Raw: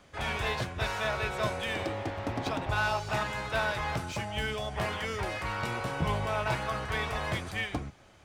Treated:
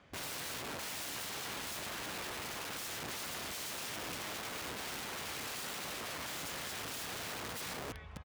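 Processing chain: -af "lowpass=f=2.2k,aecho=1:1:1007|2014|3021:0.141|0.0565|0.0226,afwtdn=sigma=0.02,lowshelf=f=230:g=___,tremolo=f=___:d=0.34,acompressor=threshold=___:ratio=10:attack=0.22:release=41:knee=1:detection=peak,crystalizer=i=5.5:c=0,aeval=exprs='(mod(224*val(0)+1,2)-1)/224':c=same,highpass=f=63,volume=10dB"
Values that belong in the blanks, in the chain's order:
4.5, 0.91, -42dB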